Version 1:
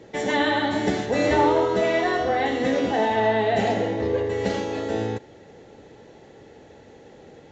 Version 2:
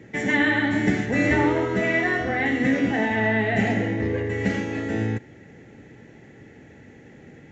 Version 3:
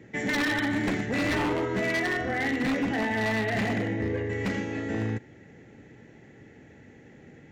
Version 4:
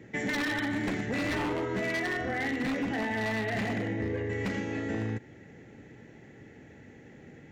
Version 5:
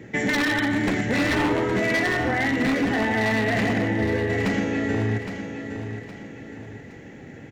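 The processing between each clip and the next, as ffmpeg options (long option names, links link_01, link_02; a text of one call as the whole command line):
ffmpeg -i in.wav -af "equalizer=frequency=125:width_type=o:width=1:gain=6,equalizer=frequency=250:width_type=o:width=1:gain=5,equalizer=frequency=500:width_type=o:width=1:gain=-6,equalizer=frequency=1000:width_type=o:width=1:gain=-7,equalizer=frequency=2000:width_type=o:width=1:gain=10,equalizer=frequency=4000:width_type=o:width=1:gain=-10" out.wav
ffmpeg -i in.wav -af "aeval=exprs='0.141*(abs(mod(val(0)/0.141+3,4)-2)-1)':channel_layout=same,volume=-4dB" out.wav
ffmpeg -i in.wav -af "acompressor=threshold=-29dB:ratio=3" out.wav
ffmpeg -i in.wav -af "aecho=1:1:815|1630|2445|3260:0.355|0.138|0.054|0.021,volume=8dB" out.wav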